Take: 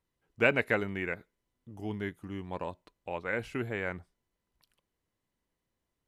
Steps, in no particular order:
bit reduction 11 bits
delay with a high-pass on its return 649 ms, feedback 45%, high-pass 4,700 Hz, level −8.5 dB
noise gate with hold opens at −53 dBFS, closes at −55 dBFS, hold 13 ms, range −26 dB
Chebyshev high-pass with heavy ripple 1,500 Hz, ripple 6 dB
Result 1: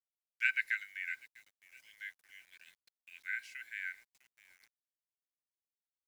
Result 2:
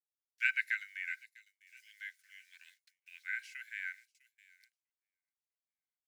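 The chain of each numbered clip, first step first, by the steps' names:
delay with a high-pass on its return, then noise gate with hold, then Chebyshev high-pass with heavy ripple, then bit reduction
bit reduction, then delay with a high-pass on its return, then noise gate with hold, then Chebyshev high-pass with heavy ripple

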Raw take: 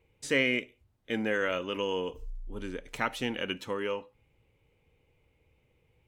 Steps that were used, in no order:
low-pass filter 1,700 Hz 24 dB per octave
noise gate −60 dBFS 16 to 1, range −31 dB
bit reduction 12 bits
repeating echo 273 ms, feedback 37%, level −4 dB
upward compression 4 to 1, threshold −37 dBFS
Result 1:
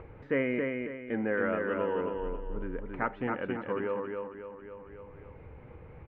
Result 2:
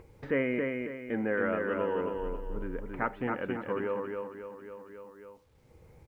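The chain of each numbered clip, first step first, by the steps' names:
repeating echo, then bit reduction, then upward compression, then noise gate, then low-pass filter
low-pass filter, then noise gate, then repeating echo, then upward compression, then bit reduction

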